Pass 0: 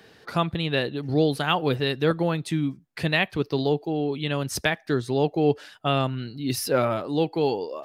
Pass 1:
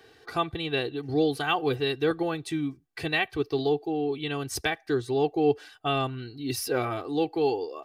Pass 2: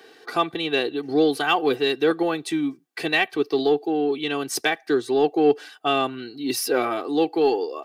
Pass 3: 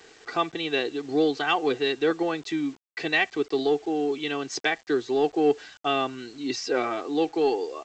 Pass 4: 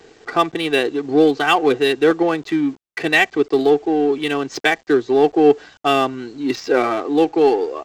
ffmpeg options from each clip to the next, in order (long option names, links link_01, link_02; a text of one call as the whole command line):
ffmpeg -i in.wav -af "aecho=1:1:2.6:0.77,volume=-5dB" out.wav
ffmpeg -i in.wav -filter_complex "[0:a]highpass=frequency=200:width=0.5412,highpass=frequency=200:width=1.3066,asplit=2[link_01][link_02];[link_02]asoftclip=type=tanh:threshold=-24dB,volume=-10.5dB[link_03];[link_01][link_03]amix=inputs=2:normalize=0,volume=4dB" out.wav
ffmpeg -i in.wav -af "equalizer=frequency=2000:width=5.1:gain=4,aresample=16000,acrusher=bits=7:mix=0:aa=0.000001,aresample=44100,volume=-3.5dB" out.wav
ffmpeg -i in.wav -filter_complex "[0:a]asplit=2[link_01][link_02];[link_02]adynamicsmooth=sensitivity=8:basefreq=600,volume=2dB[link_03];[link_01][link_03]amix=inputs=2:normalize=0,highshelf=frequency=6000:gain=-5.5,volume=2dB" out.wav